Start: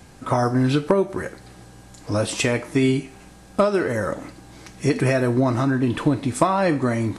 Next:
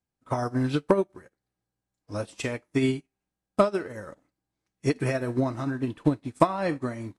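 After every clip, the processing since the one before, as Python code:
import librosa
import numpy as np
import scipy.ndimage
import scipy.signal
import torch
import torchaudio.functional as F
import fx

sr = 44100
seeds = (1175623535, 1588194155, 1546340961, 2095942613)

y = fx.upward_expand(x, sr, threshold_db=-41.0, expansion=2.5)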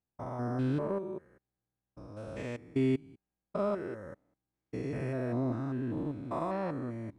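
y = fx.spec_steps(x, sr, hold_ms=200)
y = fx.high_shelf(y, sr, hz=2700.0, db=-11.5)
y = y * librosa.db_to_amplitude(-3.0)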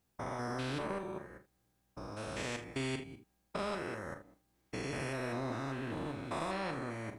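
y = fx.room_early_taps(x, sr, ms=(37, 51, 79), db=(-10.5, -15.5, -17.5))
y = fx.spectral_comp(y, sr, ratio=2.0)
y = y * librosa.db_to_amplitude(-3.0)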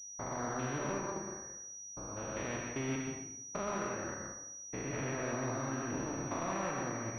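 y = fx.rev_plate(x, sr, seeds[0], rt60_s=0.71, hf_ratio=0.75, predelay_ms=105, drr_db=1.0)
y = fx.pwm(y, sr, carrier_hz=5800.0)
y = y * librosa.db_to_amplitude(-1.0)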